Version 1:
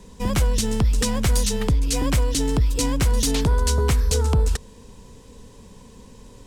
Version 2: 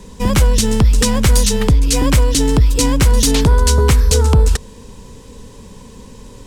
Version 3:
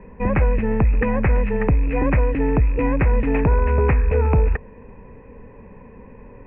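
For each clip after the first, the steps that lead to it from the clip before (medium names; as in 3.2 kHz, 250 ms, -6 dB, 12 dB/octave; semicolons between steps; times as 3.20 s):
band-stop 700 Hz, Q 12; trim +8 dB
rattle on loud lows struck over -11 dBFS, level -25 dBFS; rippled Chebyshev low-pass 2.6 kHz, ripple 6 dB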